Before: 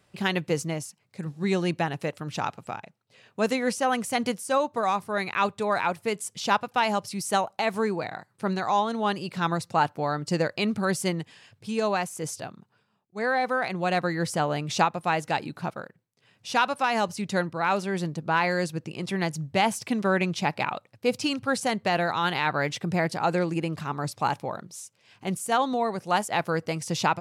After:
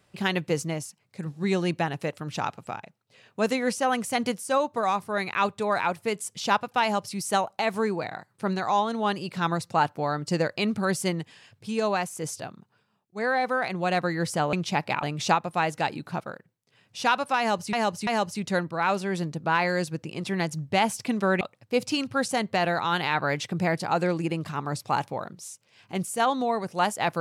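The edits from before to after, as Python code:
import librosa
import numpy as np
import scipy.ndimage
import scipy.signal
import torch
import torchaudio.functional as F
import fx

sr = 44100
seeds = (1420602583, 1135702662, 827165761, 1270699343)

y = fx.edit(x, sr, fx.repeat(start_s=16.89, length_s=0.34, count=3),
    fx.move(start_s=20.23, length_s=0.5, to_s=14.53), tone=tone)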